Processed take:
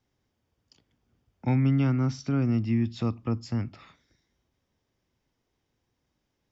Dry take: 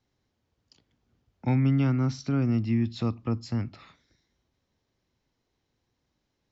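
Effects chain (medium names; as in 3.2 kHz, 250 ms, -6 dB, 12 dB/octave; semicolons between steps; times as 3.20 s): band-stop 4.1 kHz, Q 8.9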